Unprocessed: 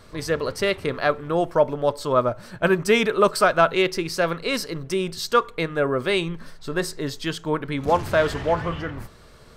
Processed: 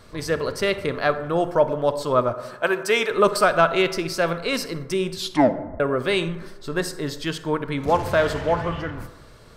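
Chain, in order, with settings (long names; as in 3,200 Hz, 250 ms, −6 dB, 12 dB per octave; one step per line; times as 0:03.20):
0:02.34–0:03.11: high-pass filter 420 Hz 12 dB per octave
0:05.15: tape stop 0.65 s
convolution reverb RT60 1.2 s, pre-delay 38 ms, DRR 12 dB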